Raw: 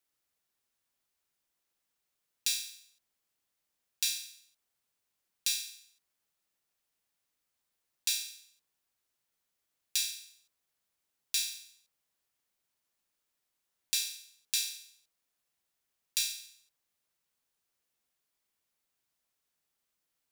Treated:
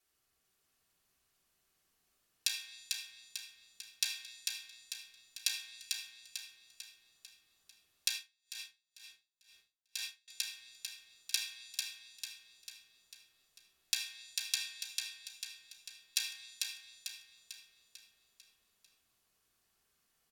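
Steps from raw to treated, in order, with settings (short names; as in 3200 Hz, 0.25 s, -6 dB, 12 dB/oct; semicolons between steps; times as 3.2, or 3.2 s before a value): treble ducked by the level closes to 1600 Hz, closed at -31.5 dBFS; feedback echo 0.446 s, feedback 50%, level -4 dB; reverb RT60 0.65 s, pre-delay 3 ms, DRR -3 dB; 8.14–10.28 dB-linear tremolo 2.1 Hz, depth 31 dB; gain +1 dB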